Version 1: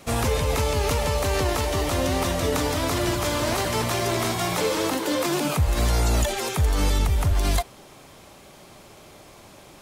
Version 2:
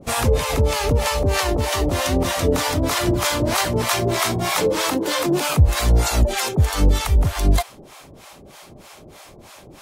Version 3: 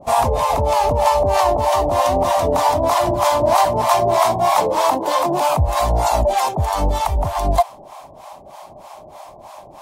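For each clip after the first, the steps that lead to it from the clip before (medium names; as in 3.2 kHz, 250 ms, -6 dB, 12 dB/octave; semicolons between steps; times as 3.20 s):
harmonic tremolo 3.2 Hz, depth 100%, crossover 620 Hz; trim +8.5 dB
high-order bell 800 Hz +15.5 dB 1.1 oct; trim -4 dB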